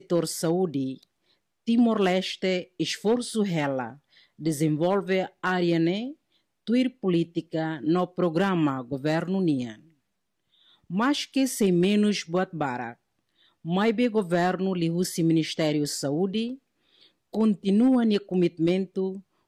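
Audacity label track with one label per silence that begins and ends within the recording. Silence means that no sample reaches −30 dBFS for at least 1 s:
9.710000	10.910000	silence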